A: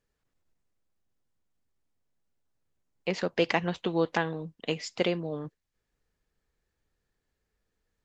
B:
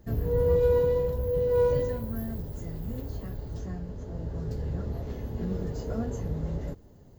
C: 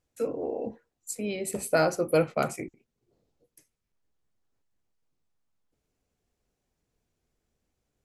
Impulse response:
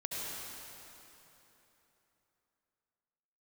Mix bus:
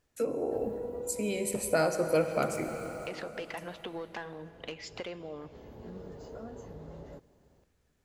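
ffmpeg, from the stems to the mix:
-filter_complex "[0:a]volume=-9.5dB,asplit=3[a][b][c];[b]volume=-19dB[d];[1:a]equalizer=f=1.9k:w=1.5:g=-4,adelay=450,volume=-16.5dB,asplit=2[e][f];[f]volume=-21.5dB[g];[2:a]volume=1dB,asplit=2[h][i];[i]volume=-10dB[j];[c]apad=whole_len=336761[k];[e][k]sidechaincompress=threshold=-42dB:ratio=8:attack=16:release=685[l];[a][l]amix=inputs=2:normalize=0,asplit=2[m][n];[n]highpass=f=720:p=1,volume=20dB,asoftclip=type=tanh:threshold=-17.5dB[o];[m][o]amix=inputs=2:normalize=0,lowpass=f=2.4k:p=1,volume=-6dB,acompressor=threshold=-39dB:ratio=4,volume=0dB[p];[3:a]atrim=start_sample=2205[q];[d][g][j]amix=inputs=3:normalize=0[r];[r][q]afir=irnorm=-1:irlink=0[s];[h][p][s]amix=inputs=3:normalize=0,acompressor=threshold=-34dB:ratio=1.5"

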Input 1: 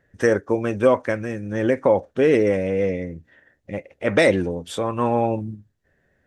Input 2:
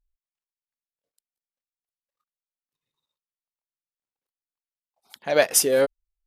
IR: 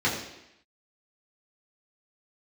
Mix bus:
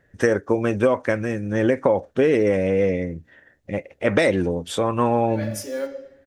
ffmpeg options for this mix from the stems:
-filter_complex "[0:a]volume=3dB,asplit=2[a][b];[1:a]aecho=1:1:3.5:0.66,acrusher=bits=7:dc=4:mix=0:aa=0.000001,volume=-12.5dB,asplit=2[c][d];[d]volume=-16.5dB[e];[b]apad=whole_len=276220[f];[c][f]sidechaincompress=threshold=-33dB:ratio=8:attack=16:release=178[g];[2:a]atrim=start_sample=2205[h];[e][h]afir=irnorm=-1:irlink=0[i];[a][g][i]amix=inputs=3:normalize=0,acompressor=threshold=-14dB:ratio=6"

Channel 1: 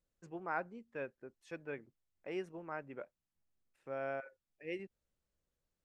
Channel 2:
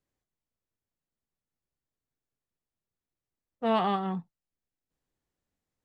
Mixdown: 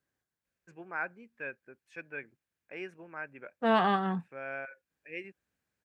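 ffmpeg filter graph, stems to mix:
-filter_complex "[0:a]equalizer=f=2.4k:w=4:g=11.5,adelay=450,volume=-2.5dB[a];[1:a]volume=0dB[b];[a][b]amix=inputs=2:normalize=0,highpass=68,equalizer=f=1.6k:w=4.3:g=11.5"

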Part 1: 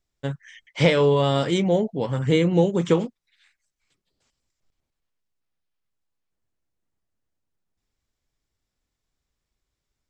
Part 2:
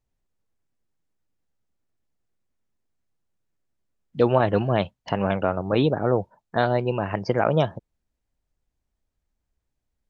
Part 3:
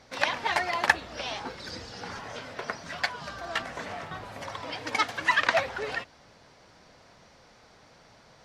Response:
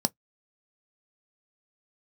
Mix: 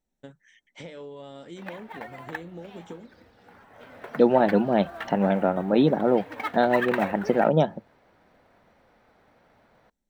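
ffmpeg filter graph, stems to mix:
-filter_complex "[0:a]acompressor=threshold=-29dB:ratio=4,volume=-13dB,asplit=2[a][b];[b]volume=-18dB[c];[1:a]volume=-5.5dB,asplit=2[d][e];[e]volume=-9.5dB[f];[2:a]lowpass=2.4k,acrusher=bits=6:mode=log:mix=0:aa=0.000001,adelay=1450,volume=-4.5dB,afade=t=in:st=3.7:d=0.28:silence=0.334965,asplit=2[g][h];[h]volume=-23.5dB[i];[3:a]atrim=start_sample=2205[j];[c][f][i]amix=inputs=3:normalize=0[k];[k][j]afir=irnorm=-1:irlink=0[l];[a][d][g][l]amix=inputs=4:normalize=0"

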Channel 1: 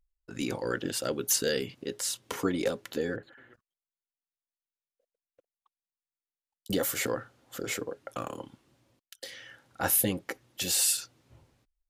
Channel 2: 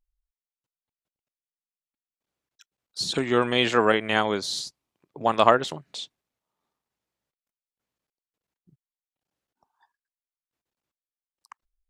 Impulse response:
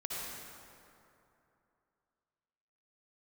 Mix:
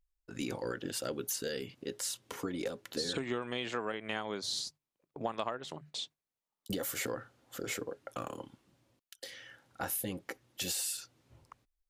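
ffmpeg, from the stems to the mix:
-filter_complex "[0:a]alimiter=limit=-19dB:level=0:latency=1:release=319,volume=-3.5dB[a];[1:a]bandreject=f=50:t=h:w=6,bandreject=f=100:t=h:w=6,bandreject=f=150:t=h:w=6,agate=range=-9dB:threshold=-47dB:ratio=16:detection=peak,volume=-3.5dB[b];[a][b]amix=inputs=2:normalize=0,acompressor=threshold=-31dB:ratio=20"

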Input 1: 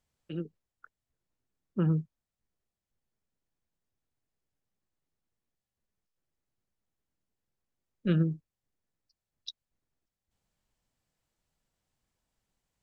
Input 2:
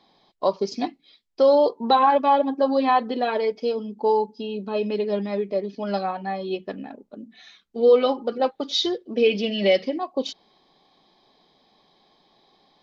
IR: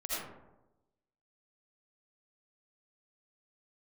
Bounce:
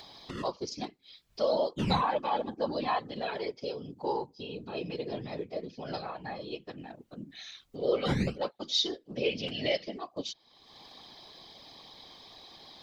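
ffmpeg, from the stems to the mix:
-filter_complex "[0:a]acrusher=samples=16:mix=1:aa=0.000001:lfo=1:lforange=25.6:lforate=0.54,lowpass=3.3k,volume=1.5dB[a];[1:a]volume=-6.5dB[b];[a][b]amix=inputs=2:normalize=0,highshelf=f=2.8k:g=12,acompressor=mode=upward:threshold=-30dB:ratio=2.5,afftfilt=real='hypot(re,im)*cos(2*PI*random(0))':imag='hypot(re,im)*sin(2*PI*random(1))':win_size=512:overlap=0.75"

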